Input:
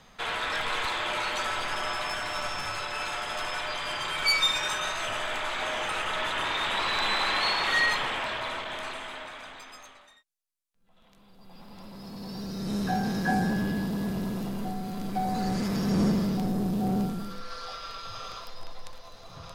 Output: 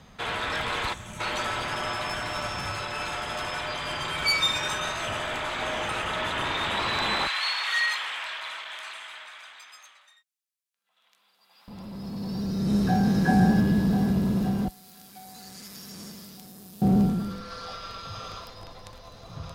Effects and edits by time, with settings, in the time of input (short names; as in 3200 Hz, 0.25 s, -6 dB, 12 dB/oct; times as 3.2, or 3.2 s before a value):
0.94–1.2 spectral gain 250–5500 Hz -15 dB
7.27–11.68 HPF 1400 Hz
12.21–13.08 echo throw 0.52 s, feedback 65%, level -5.5 dB
14.68–16.82 pre-emphasis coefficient 0.97
whole clip: HPF 41 Hz; low shelf 290 Hz +10.5 dB